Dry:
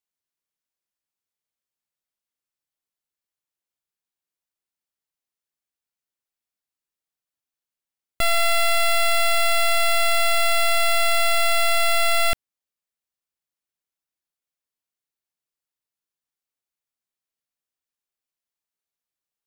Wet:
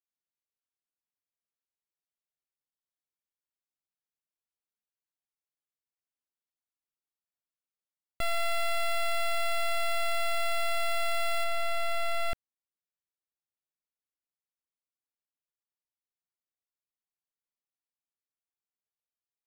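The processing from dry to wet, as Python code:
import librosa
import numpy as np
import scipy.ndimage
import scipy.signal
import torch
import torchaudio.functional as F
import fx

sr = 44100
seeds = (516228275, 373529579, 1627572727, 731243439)

y = fx.high_shelf(x, sr, hz=2900.0, db=fx.steps((0.0, -6.5), (11.43, -11.5)))
y = F.gain(torch.from_numpy(y), -8.5).numpy()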